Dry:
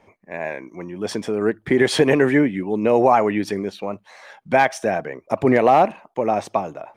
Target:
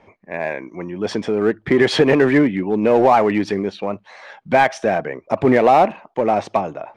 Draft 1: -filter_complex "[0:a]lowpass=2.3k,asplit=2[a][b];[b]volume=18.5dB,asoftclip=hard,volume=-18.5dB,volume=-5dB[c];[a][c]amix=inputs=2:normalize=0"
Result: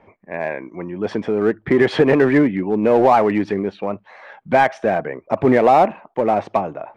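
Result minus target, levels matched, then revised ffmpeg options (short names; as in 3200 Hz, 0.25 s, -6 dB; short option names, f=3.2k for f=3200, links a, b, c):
4000 Hz band -6.0 dB
-filter_complex "[0:a]lowpass=4.8k,asplit=2[a][b];[b]volume=18.5dB,asoftclip=hard,volume=-18.5dB,volume=-5dB[c];[a][c]amix=inputs=2:normalize=0"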